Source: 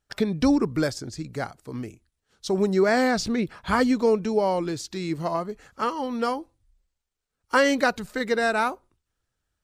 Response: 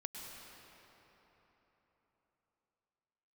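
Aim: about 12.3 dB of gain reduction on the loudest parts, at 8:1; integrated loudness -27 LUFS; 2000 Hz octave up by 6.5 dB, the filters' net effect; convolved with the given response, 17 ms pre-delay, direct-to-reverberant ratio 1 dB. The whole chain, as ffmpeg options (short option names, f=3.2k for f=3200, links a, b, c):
-filter_complex "[0:a]equalizer=f=2k:t=o:g=8.5,acompressor=threshold=-25dB:ratio=8,asplit=2[a][b];[1:a]atrim=start_sample=2205,adelay=17[c];[b][c]afir=irnorm=-1:irlink=0,volume=0.5dB[d];[a][d]amix=inputs=2:normalize=0,volume=1.5dB"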